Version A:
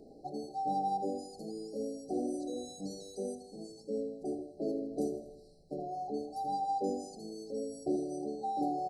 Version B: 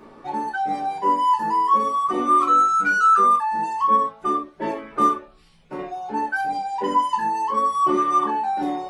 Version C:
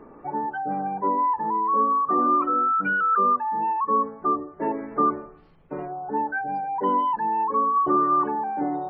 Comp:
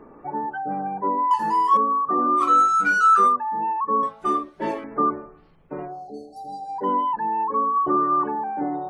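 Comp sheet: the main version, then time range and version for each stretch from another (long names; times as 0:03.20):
C
0:01.31–0:01.77: punch in from B
0:02.39–0:03.30: punch in from B, crossfade 0.06 s
0:04.03–0:04.84: punch in from B
0:05.96–0:06.77: punch in from A, crossfade 0.24 s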